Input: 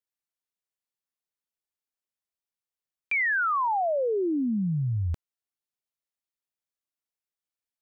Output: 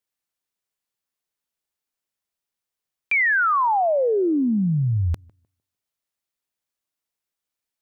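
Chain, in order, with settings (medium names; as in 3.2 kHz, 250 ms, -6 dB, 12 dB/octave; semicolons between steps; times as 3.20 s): tape echo 150 ms, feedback 28%, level -22 dB, low-pass 1.3 kHz; trim +6 dB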